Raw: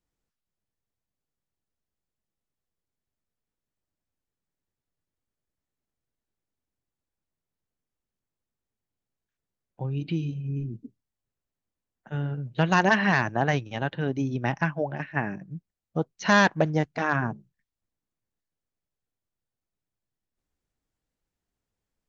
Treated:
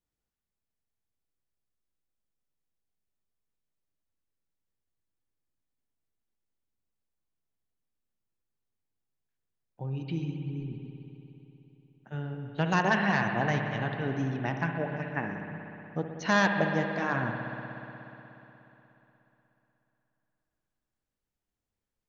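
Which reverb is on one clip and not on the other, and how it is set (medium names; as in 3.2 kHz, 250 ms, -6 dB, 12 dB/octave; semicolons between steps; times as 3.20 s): spring tank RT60 3.5 s, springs 60 ms, chirp 75 ms, DRR 3.5 dB; trim -5.5 dB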